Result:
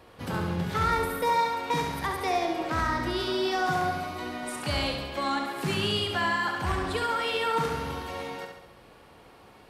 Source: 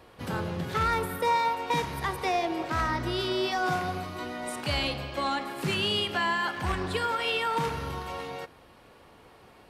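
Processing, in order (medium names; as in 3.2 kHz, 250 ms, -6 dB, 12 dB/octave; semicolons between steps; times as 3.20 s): dynamic bell 2.7 kHz, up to -4 dB, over -42 dBFS, Q 2.4; on a send: flutter echo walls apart 11.8 m, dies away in 0.76 s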